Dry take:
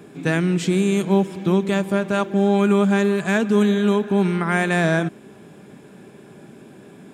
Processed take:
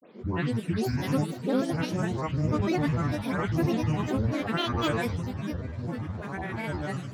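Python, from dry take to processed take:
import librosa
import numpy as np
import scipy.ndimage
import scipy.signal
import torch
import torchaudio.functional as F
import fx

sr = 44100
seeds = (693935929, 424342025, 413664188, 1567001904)

y = fx.spec_delay(x, sr, highs='late', ms=290)
y = fx.echo_pitch(y, sr, ms=585, semitones=-4, count=3, db_per_echo=-6.0)
y = fx.granulator(y, sr, seeds[0], grain_ms=100.0, per_s=20.0, spray_ms=14.0, spread_st=12)
y = F.gain(torch.from_numpy(y), -7.5).numpy()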